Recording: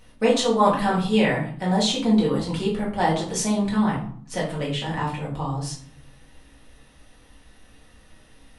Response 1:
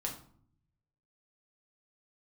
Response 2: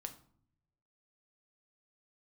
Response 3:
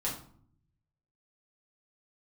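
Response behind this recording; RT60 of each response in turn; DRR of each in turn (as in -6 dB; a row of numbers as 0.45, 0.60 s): 3; 0.55, 0.60, 0.55 s; -1.0, 6.0, -6.0 dB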